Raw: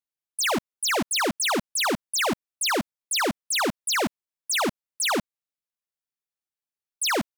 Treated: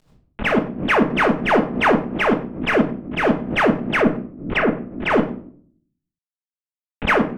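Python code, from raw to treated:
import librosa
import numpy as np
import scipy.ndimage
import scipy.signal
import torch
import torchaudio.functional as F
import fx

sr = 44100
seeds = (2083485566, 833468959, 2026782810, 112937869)

p1 = fx.cvsd(x, sr, bps=16000)
p2 = 10.0 ** (-36.0 / 20.0) * np.tanh(p1 / 10.0 ** (-36.0 / 20.0))
p3 = p1 + (p2 * librosa.db_to_amplitude(-4.0))
p4 = fx.rotary(p3, sr, hz=6.3)
p5 = fx.env_lowpass_down(p4, sr, base_hz=2100.0, full_db=-26.5, at=(4.0, 5.1))
p6 = fx.room_shoebox(p5, sr, seeds[0], volume_m3=590.0, walls='furnished', distance_m=1.4)
p7 = fx.pre_swell(p6, sr, db_per_s=100.0)
y = p7 * librosa.db_to_amplitude(9.0)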